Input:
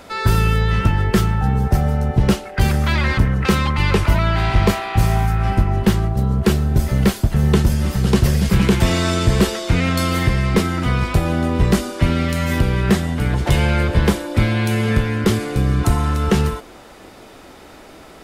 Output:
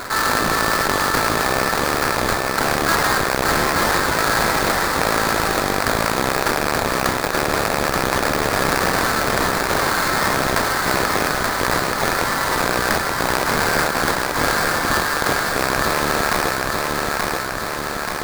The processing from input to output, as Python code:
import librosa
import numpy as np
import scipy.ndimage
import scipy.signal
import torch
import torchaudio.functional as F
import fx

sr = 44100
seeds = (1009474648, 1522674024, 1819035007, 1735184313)

y = fx.rattle_buzz(x, sr, strikes_db=-18.0, level_db=-10.0)
y = scipy.signal.sosfilt(scipy.signal.butter(4, 1000.0, 'highpass', fs=sr, output='sos'), y)
y = fx.peak_eq(y, sr, hz=1700.0, db=10.0, octaves=0.23)
y = fx.sample_hold(y, sr, seeds[0], rate_hz=3000.0, jitter_pct=20)
y = fx.echo_feedback(y, sr, ms=880, feedback_pct=46, wet_db=-5.0)
y = fx.env_flatten(y, sr, amount_pct=50)